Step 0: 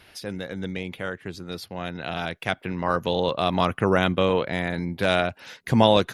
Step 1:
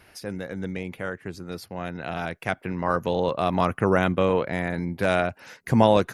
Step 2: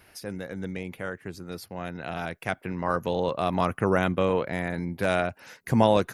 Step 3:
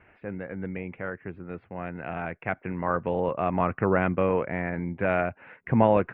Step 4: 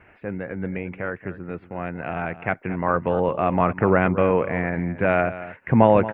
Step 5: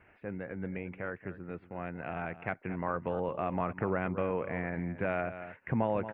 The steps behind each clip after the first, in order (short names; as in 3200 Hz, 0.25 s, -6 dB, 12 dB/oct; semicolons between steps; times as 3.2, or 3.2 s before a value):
bell 3500 Hz -9.5 dB 0.7 oct
high shelf 11000 Hz +8 dB; gain -2.5 dB
steep low-pass 2600 Hz 48 dB/oct
echo 0.228 s -14.5 dB; gain +5 dB
compressor 2:1, threshold -21 dBFS, peak gain reduction 7 dB; gain -9 dB